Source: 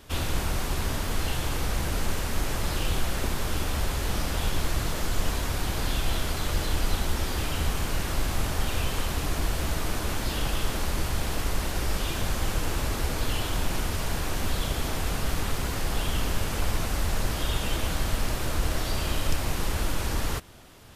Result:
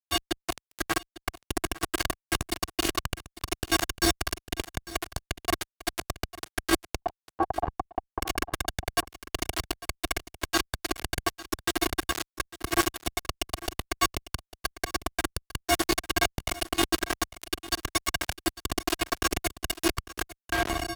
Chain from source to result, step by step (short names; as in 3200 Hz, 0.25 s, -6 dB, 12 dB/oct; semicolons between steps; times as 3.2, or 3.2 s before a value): metallic resonator 330 Hz, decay 0.59 s, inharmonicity 0.03; shoebox room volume 420 m³, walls mixed, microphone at 2.3 m; AGC gain up to 10 dB; fuzz box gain 38 dB, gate -46 dBFS; 7.02–8.22 synth low-pass 810 Hz, resonance Q 4.9; echo 0.85 s -21.5 dB; limiter -13 dBFS, peak gain reduction 10 dB; HPF 66 Hz 12 dB/oct